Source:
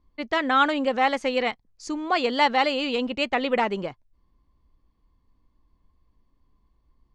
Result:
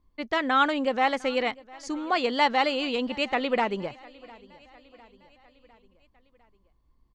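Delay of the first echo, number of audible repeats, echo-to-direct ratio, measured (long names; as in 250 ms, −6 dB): 704 ms, 3, −21.5 dB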